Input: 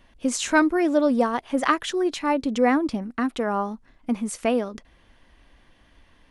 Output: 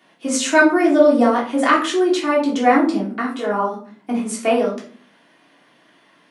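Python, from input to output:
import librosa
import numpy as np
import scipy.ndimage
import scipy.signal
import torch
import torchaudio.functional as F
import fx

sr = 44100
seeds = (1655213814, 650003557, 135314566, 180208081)

y = scipy.signal.sosfilt(scipy.signal.bessel(8, 270.0, 'highpass', norm='mag', fs=sr, output='sos'), x)
y = fx.room_shoebox(y, sr, seeds[0], volume_m3=340.0, walls='furnished', distance_m=3.3)
y = fx.detune_double(y, sr, cents=32, at=(3.21, 3.72), fade=0.02)
y = F.gain(torch.from_numpy(y), 1.0).numpy()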